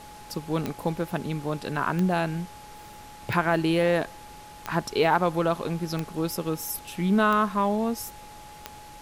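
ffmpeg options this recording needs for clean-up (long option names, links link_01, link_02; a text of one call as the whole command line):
ffmpeg -i in.wav -af "adeclick=threshold=4,bandreject=frequency=840:width=30,afftdn=noise_reduction=26:noise_floor=-45" out.wav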